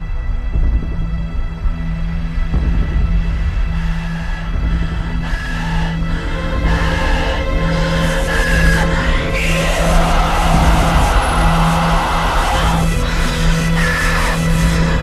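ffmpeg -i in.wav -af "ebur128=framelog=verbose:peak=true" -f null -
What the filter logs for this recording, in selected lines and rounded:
Integrated loudness:
  I:         -16.8 LUFS
  Threshold: -26.8 LUFS
Loudness range:
  LRA:         6.0 LU
  Threshold: -36.7 LUFS
  LRA low:   -20.3 LUFS
  LRA high:  -14.4 LUFS
True peak:
  Peak:       -1.3 dBFS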